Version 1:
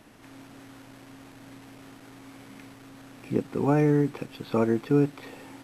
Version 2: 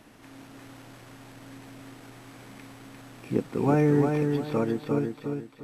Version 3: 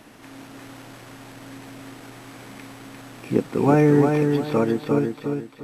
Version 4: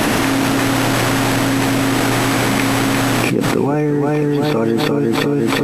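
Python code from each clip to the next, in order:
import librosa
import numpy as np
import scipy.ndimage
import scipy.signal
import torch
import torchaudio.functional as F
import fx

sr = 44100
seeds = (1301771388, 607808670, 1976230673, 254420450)

y1 = fx.fade_out_tail(x, sr, length_s=1.48)
y1 = fx.echo_feedback(y1, sr, ms=349, feedback_pct=32, wet_db=-4.5)
y2 = fx.low_shelf(y1, sr, hz=130.0, db=-5.0)
y2 = y2 * 10.0 ** (6.5 / 20.0)
y3 = fx.env_flatten(y2, sr, amount_pct=100)
y3 = y3 * 10.0 ** (-2.0 / 20.0)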